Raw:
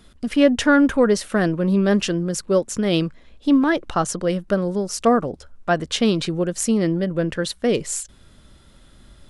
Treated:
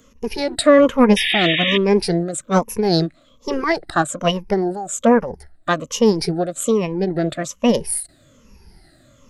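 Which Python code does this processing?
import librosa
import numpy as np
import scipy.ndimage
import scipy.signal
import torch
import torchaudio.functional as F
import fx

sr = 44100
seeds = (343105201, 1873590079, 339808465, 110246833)

y = fx.spec_ripple(x, sr, per_octave=0.92, drift_hz=-1.2, depth_db=22)
y = fx.formant_shift(y, sr, semitones=5)
y = fx.spec_paint(y, sr, seeds[0], shape='noise', start_s=1.16, length_s=0.62, low_hz=1700.0, high_hz=3800.0, level_db=-16.0)
y = y * librosa.db_to_amplitude(-4.0)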